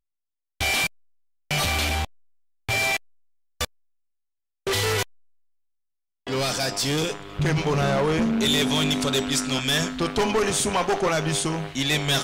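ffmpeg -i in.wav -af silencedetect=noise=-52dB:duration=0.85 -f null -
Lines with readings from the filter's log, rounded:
silence_start: 3.65
silence_end: 4.67 | silence_duration: 1.01
silence_start: 5.15
silence_end: 6.27 | silence_duration: 1.12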